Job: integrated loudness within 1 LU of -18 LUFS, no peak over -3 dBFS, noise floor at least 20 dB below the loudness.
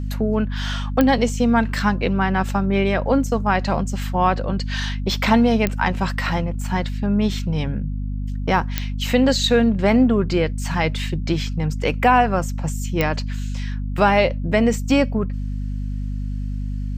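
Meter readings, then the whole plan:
clicks found 4; hum 50 Hz; highest harmonic 250 Hz; hum level -23 dBFS; loudness -21.0 LUFS; peak level -2.5 dBFS; loudness target -18.0 LUFS
-> de-click; de-hum 50 Hz, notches 5; trim +3 dB; peak limiter -3 dBFS

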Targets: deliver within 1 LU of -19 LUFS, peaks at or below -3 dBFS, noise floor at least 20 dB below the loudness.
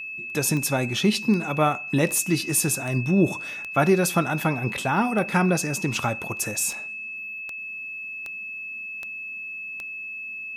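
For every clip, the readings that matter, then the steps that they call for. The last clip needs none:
clicks found 13; steady tone 2.6 kHz; tone level -32 dBFS; loudness -25.0 LUFS; peak level -7.0 dBFS; loudness target -19.0 LUFS
-> de-click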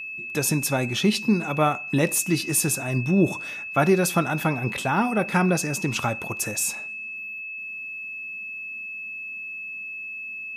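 clicks found 0; steady tone 2.6 kHz; tone level -32 dBFS
-> band-stop 2.6 kHz, Q 30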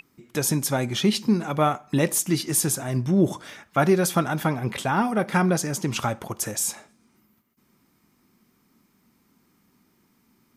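steady tone not found; loudness -24.0 LUFS; peak level -7.0 dBFS; loudness target -19.0 LUFS
-> trim +5 dB; peak limiter -3 dBFS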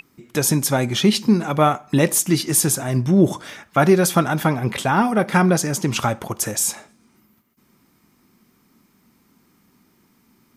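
loudness -19.0 LUFS; peak level -3.0 dBFS; noise floor -61 dBFS

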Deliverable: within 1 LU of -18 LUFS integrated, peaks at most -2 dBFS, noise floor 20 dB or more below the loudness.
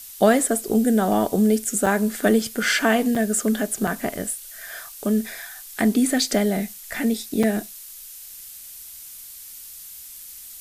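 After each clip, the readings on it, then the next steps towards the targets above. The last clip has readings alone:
dropouts 4; longest dropout 4.7 ms; noise floor -41 dBFS; noise floor target -42 dBFS; loudness -21.5 LUFS; peak level -3.5 dBFS; loudness target -18.0 LUFS
-> interpolate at 1.86/3.15/3.87/7.43 s, 4.7 ms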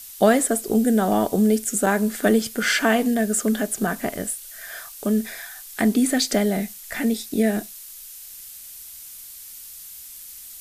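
dropouts 0; noise floor -41 dBFS; noise floor target -42 dBFS
-> noise reduction 6 dB, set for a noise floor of -41 dBFS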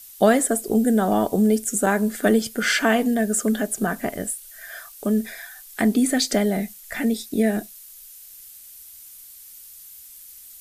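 noise floor -44 dBFS; loudness -21.5 LUFS; peak level -4.0 dBFS; loudness target -18.0 LUFS
-> trim +3.5 dB; peak limiter -2 dBFS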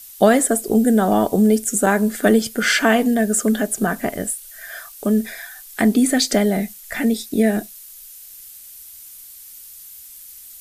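loudness -18.0 LUFS; peak level -2.0 dBFS; noise floor -41 dBFS

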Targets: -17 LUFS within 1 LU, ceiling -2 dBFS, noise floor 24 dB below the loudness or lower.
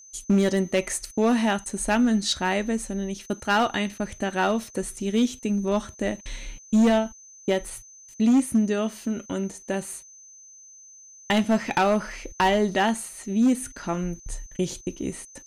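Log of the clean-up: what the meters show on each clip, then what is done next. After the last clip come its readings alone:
clipped samples 1.0%; clipping level -14.5 dBFS; steady tone 6.2 kHz; tone level -46 dBFS; loudness -25.0 LUFS; peak level -14.5 dBFS; loudness target -17.0 LUFS
-> clip repair -14.5 dBFS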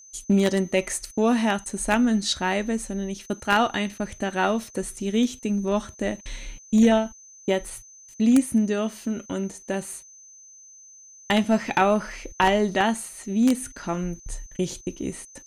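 clipped samples 0.0%; steady tone 6.2 kHz; tone level -46 dBFS
-> band-stop 6.2 kHz, Q 30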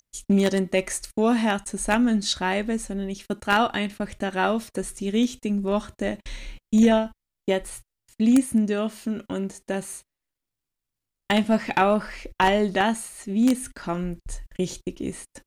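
steady tone not found; loudness -24.5 LUFS; peak level -5.5 dBFS; loudness target -17.0 LUFS
-> trim +7.5 dB; peak limiter -2 dBFS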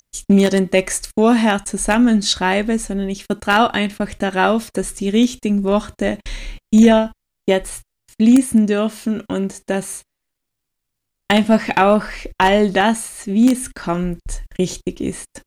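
loudness -17.5 LUFS; peak level -2.0 dBFS; noise floor -78 dBFS

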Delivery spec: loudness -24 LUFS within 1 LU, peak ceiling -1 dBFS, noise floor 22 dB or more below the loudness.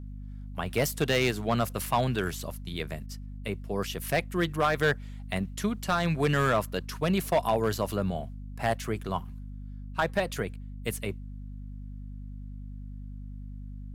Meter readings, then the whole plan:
clipped samples 0.5%; clipping level -17.5 dBFS; hum 50 Hz; highest harmonic 250 Hz; hum level -38 dBFS; loudness -29.5 LUFS; peak level -17.5 dBFS; loudness target -24.0 LUFS
-> clip repair -17.5 dBFS; hum notches 50/100/150/200/250 Hz; trim +5.5 dB

